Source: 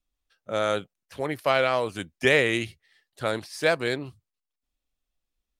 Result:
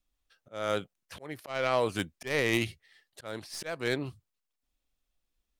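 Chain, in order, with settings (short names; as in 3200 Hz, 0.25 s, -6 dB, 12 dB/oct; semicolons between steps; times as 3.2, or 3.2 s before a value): tracing distortion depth 0.073 ms; auto swell 0.452 s; gain +1.5 dB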